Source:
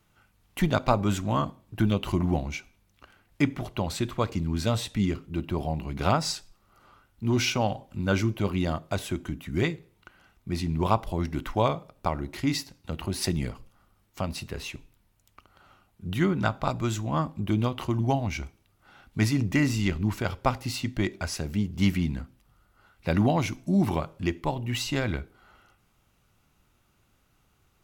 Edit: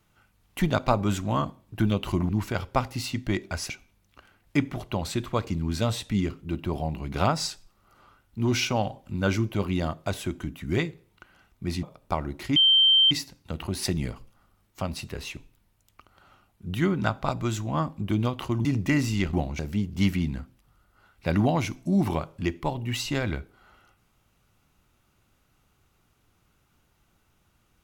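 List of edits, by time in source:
2.29–2.55 swap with 19.99–21.4
10.68–11.77 cut
12.5 add tone 3130 Hz -15 dBFS 0.55 s
18.04–19.31 cut

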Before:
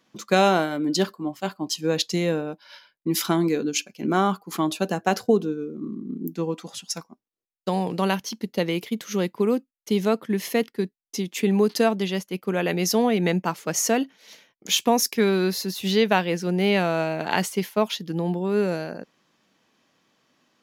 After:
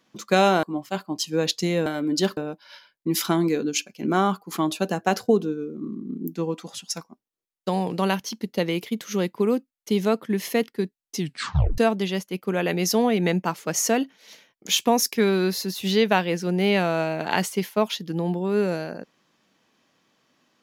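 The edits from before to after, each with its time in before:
0.63–1.14 move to 2.37
11.17 tape stop 0.61 s

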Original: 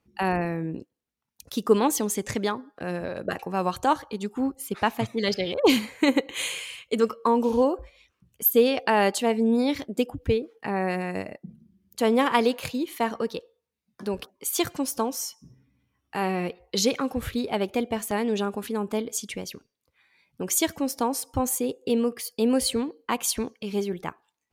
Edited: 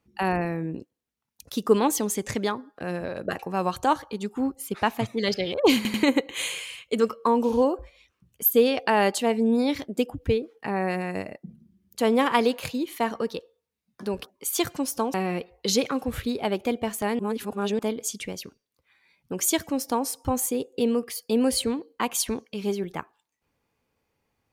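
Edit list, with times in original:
5.76 stutter in place 0.09 s, 3 plays
15.14–16.23 cut
18.28–18.88 reverse

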